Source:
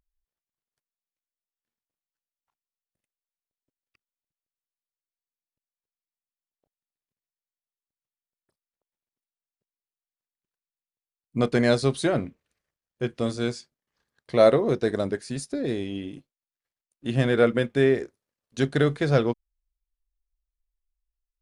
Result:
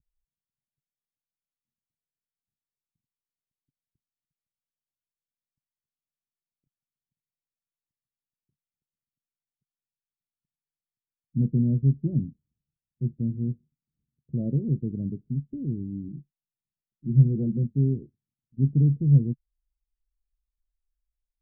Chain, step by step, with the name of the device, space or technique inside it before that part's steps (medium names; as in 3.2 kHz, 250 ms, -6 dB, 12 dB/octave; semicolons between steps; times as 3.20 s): 16.08–17.64 s: comb 5.6 ms, depth 59%; the neighbour's flat through the wall (low-pass 250 Hz 24 dB/octave; peaking EQ 140 Hz +7.5 dB 0.84 oct)